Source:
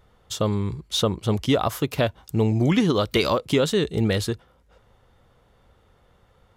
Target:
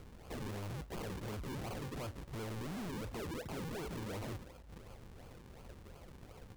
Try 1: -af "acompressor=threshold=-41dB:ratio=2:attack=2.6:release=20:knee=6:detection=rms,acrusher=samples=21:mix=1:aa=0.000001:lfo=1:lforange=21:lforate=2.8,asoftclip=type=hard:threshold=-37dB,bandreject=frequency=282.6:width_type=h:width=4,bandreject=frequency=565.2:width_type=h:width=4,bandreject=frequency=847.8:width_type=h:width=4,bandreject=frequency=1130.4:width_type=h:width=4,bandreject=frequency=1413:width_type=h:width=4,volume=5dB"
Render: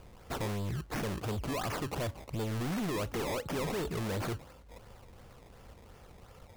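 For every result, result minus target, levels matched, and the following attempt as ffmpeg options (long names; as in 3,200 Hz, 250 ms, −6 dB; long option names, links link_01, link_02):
sample-and-hold swept by an LFO: distortion −6 dB; hard clipping: distortion −4 dB
-af "acompressor=threshold=-41dB:ratio=2:attack=2.6:release=20:knee=6:detection=rms,acrusher=samples=46:mix=1:aa=0.000001:lfo=1:lforange=46:lforate=2.8,asoftclip=type=hard:threshold=-37dB,bandreject=frequency=282.6:width_type=h:width=4,bandreject=frequency=565.2:width_type=h:width=4,bandreject=frequency=847.8:width_type=h:width=4,bandreject=frequency=1130.4:width_type=h:width=4,bandreject=frequency=1413:width_type=h:width=4,volume=5dB"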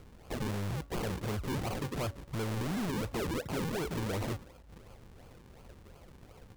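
hard clipping: distortion −4 dB
-af "acompressor=threshold=-41dB:ratio=2:attack=2.6:release=20:knee=6:detection=rms,acrusher=samples=46:mix=1:aa=0.000001:lfo=1:lforange=46:lforate=2.8,asoftclip=type=hard:threshold=-46dB,bandreject=frequency=282.6:width_type=h:width=4,bandreject=frequency=565.2:width_type=h:width=4,bandreject=frequency=847.8:width_type=h:width=4,bandreject=frequency=1130.4:width_type=h:width=4,bandreject=frequency=1413:width_type=h:width=4,volume=5dB"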